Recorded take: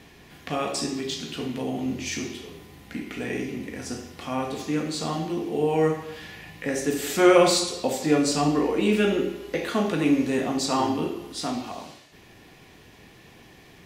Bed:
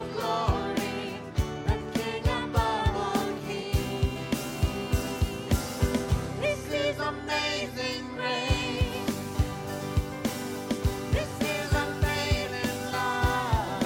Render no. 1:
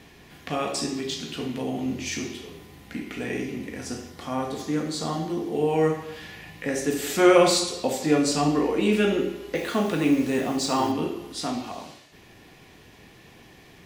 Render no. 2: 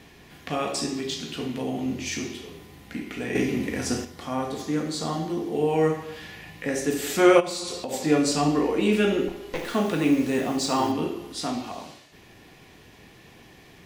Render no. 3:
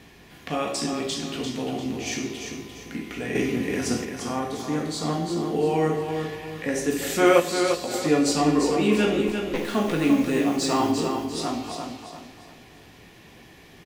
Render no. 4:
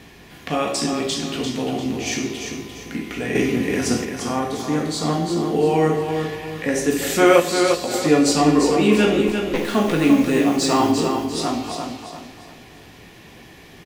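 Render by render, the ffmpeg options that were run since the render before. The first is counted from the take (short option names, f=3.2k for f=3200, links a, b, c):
-filter_complex "[0:a]asettb=1/sr,asplit=3[a][b][c];[a]atrim=end=4.104[d];[b]atrim=start=4.1:end=5.55,asetpts=PTS-STARTPTS,afade=t=in:d=0.004:c=qsin,afade=t=out:st=1.446:d=0.004:c=qsin,equalizer=f=2.6k:t=o:w=0.32:g=-8.5[e];[c]atrim=start=5.546[f];[d][e]acrossfade=d=0.004:c1=hsin:c2=qsin[g];[g][f]acrossfade=d=0.004:c1=qsin:c2=hsin,asettb=1/sr,asplit=3[h][i][j];[h]atrim=end=9.554[k];[i]atrim=start=9.55:end=10.92,asetpts=PTS-STARTPTS,afade=t=in:d=0.004:c=qsin,afade=t=out:st=1.366:d=0.004:c=qsin,acrusher=bits=6:mix=0:aa=0.5[l];[j]atrim=start=10.916[m];[k][l]acrossfade=d=0.004:c1=hsin:c2=qsin[n];[n][m]acrossfade=d=0.004:c1=qsin:c2=hsin"
-filter_complex "[0:a]asettb=1/sr,asplit=3[a][b][c];[a]atrim=end=3.354[d];[b]atrim=start=3.35:end=4.05,asetpts=PTS-STARTPTS,afade=t=in:d=0.004:c=qsin,afade=t=out:st=0.696:d=0.004:c=qsin,acontrast=66[e];[c]atrim=start=4.046[f];[d][e]acrossfade=d=0.004:c1=hsin:c2=qsin[g];[g][f]acrossfade=d=0.004:c1=qsin:c2=hsin,asplit=3[h][i][j];[h]afade=t=out:st=7.39:d=0.02[k];[i]acompressor=threshold=-27dB:ratio=12:attack=3.2:release=140:knee=1:detection=peak,afade=t=in:st=7.39:d=0.02,afade=t=out:st=7.92:d=0.02[l];[j]afade=t=in:st=7.92:d=0.02[m];[k][l][m]amix=inputs=3:normalize=0,asettb=1/sr,asplit=3[n][o][p];[n]atrim=end=9.284[q];[o]atrim=start=9.28:end=9.74,asetpts=PTS-STARTPTS,afade=t=in:d=0.004:c=qsin,afade=t=out:st=0.456:d=0.004:c=qsin,aeval=exprs='clip(val(0),-1,0.0141)':c=same[r];[p]atrim=start=9.736[s];[q][r]acrossfade=d=0.004:c1=hsin:c2=qsin[t];[t][s]acrossfade=d=0.004:c1=qsin:c2=hsin"
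-filter_complex "[0:a]asplit=2[a][b];[b]adelay=18,volume=-11dB[c];[a][c]amix=inputs=2:normalize=0,asplit=2[d][e];[e]aecho=0:1:346|692|1038|1384:0.473|0.17|0.0613|0.0221[f];[d][f]amix=inputs=2:normalize=0"
-af "volume=5dB,alimiter=limit=-2dB:level=0:latency=1"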